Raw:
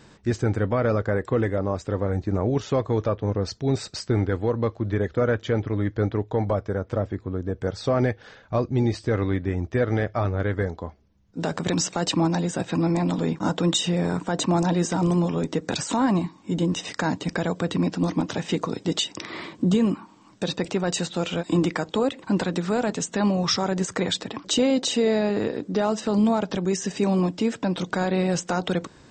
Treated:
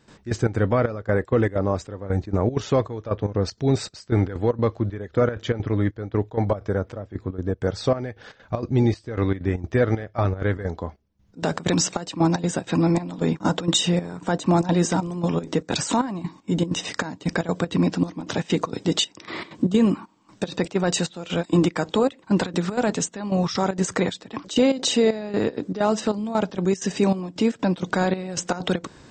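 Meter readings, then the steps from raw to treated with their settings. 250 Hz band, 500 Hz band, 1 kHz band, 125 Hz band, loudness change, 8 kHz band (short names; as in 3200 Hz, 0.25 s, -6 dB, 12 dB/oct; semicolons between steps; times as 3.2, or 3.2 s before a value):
+1.0 dB, +1.0 dB, +1.0 dB, +1.0 dB, +1.0 dB, +1.5 dB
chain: step gate ".xx.xx.xxxx.." 193 bpm -12 dB; gain +3 dB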